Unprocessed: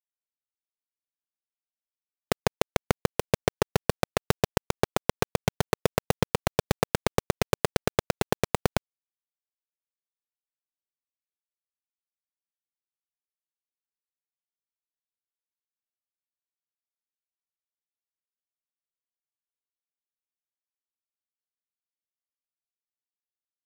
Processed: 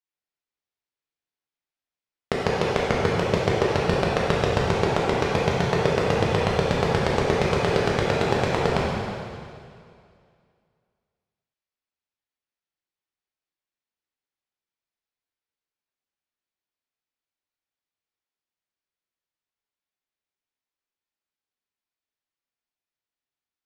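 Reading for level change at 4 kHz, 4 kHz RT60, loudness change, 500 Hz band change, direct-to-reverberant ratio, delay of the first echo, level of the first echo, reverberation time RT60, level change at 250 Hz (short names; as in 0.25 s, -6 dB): +4.5 dB, 2.1 s, +5.5 dB, +6.5 dB, -5.5 dB, none, none, 2.3 s, +5.5 dB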